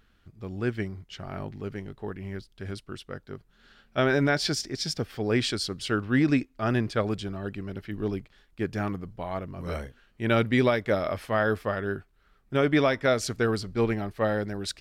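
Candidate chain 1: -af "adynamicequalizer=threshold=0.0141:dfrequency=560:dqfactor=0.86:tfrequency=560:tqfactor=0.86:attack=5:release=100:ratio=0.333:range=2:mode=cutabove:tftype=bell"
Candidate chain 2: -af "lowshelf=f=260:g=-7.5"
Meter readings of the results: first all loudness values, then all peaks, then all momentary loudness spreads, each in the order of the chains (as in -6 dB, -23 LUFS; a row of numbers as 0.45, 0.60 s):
-29.0, -29.5 LUFS; -12.5, -11.0 dBFS; 15, 17 LU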